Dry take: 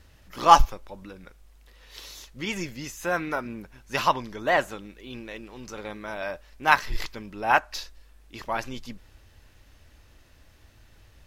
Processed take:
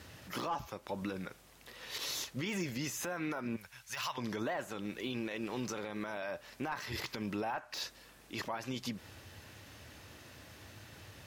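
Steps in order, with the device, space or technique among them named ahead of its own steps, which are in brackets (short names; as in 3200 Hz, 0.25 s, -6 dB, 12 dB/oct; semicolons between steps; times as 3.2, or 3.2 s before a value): 3.56–4.18 passive tone stack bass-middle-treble 10-0-10; podcast mastering chain (HPF 93 Hz 24 dB/oct; de-esser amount 95%; compressor 4:1, threshold -38 dBFS, peak gain reduction 19 dB; limiter -34.5 dBFS, peak gain reduction 11.5 dB; gain +7 dB; MP3 112 kbps 48000 Hz)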